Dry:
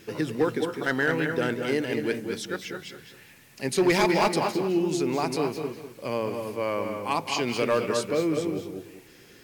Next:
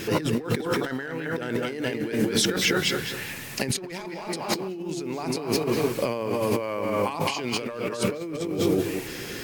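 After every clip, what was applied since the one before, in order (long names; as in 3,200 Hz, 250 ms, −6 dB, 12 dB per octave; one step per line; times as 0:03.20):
compressor whose output falls as the input rises −37 dBFS, ratio −1
level +8.5 dB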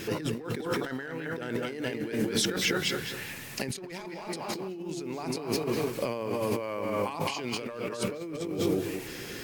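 every ending faded ahead of time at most 120 dB per second
level −4.5 dB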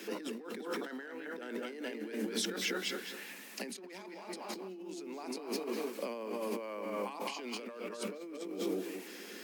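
Butterworth high-pass 190 Hz 96 dB per octave
level −7.5 dB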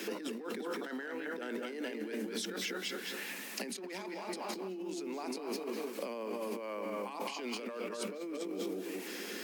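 downward compressor 5 to 1, threshold −42 dBFS, peak gain reduction 10.5 dB
level +6 dB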